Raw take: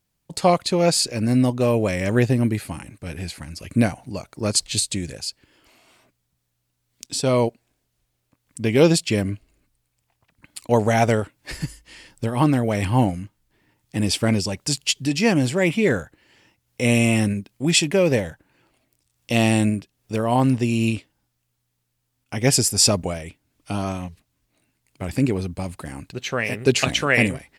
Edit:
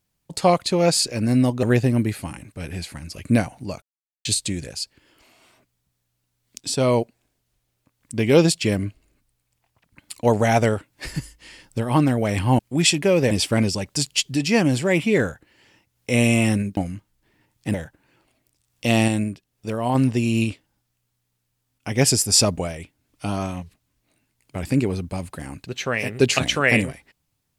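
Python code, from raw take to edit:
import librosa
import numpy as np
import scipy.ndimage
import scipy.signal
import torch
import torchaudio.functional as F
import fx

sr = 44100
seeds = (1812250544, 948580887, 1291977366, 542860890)

y = fx.edit(x, sr, fx.cut(start_s=1.63, length_s=0.46),
    fx.silence(start_s=4.28, length_s=0.43),
    fx.swap(start_s=13.05, length_s=0.97, other_s=17.48, other_length_s=0.72),
    fx.clip_gain(start_s=19.54, length_s=0.87, db=-3.5), tone=tone)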